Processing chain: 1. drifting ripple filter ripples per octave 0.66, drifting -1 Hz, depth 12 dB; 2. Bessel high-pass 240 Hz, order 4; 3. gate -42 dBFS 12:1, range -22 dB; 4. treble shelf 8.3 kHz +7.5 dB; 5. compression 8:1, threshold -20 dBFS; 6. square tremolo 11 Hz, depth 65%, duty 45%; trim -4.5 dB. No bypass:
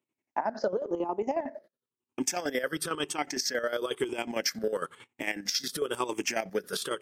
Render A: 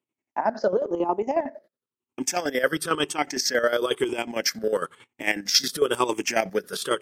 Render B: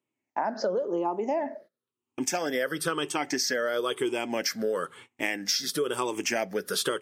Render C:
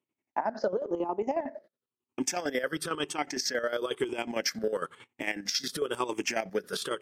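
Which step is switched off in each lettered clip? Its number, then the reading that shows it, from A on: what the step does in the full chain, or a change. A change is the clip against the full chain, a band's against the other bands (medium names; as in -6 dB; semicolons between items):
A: 5, mean gain reduction 5.5 dB; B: 6, loudness change +2.5 LU; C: 4, 8 kHz band -1.5 dB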